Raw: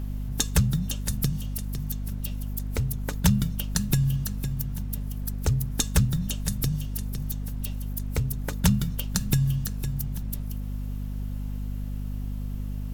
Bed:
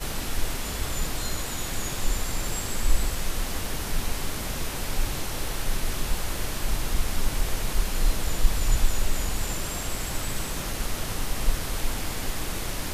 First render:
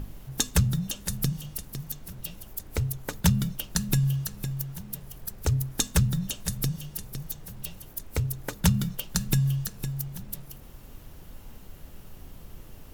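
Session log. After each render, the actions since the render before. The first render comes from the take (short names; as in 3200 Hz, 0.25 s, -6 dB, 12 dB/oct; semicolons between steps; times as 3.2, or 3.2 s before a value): notches 50/100/150/200/250 Hz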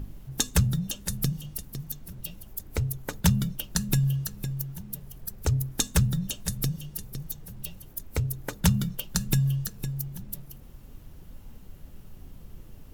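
denoiser 6 dB, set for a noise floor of -47 dBFS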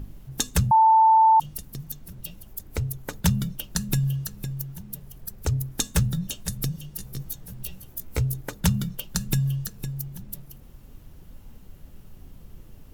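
0.71–1.4 bleep 887 Hz -12.5 dBFS; 5.83–6.43 doubler 18 ms -13 dB; 6.97–8.41 doubler 16 ms -2.5 dB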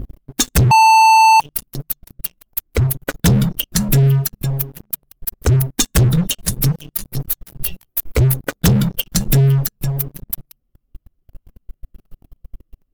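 per-bin expansion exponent 1.5; sample leveller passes 5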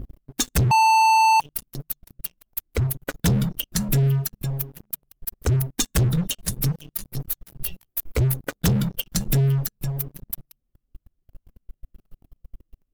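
gain -7 dB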